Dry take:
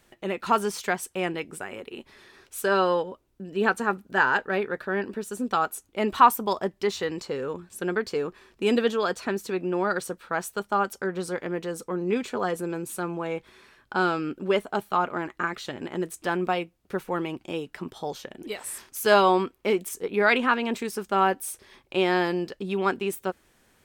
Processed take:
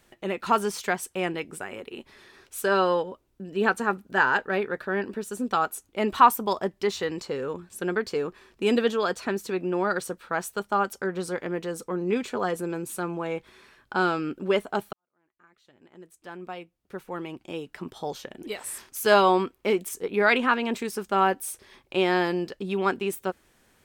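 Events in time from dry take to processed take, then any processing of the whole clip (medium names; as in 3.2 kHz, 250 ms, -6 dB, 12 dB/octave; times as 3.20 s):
14.93–18.07 s: fade in quadratic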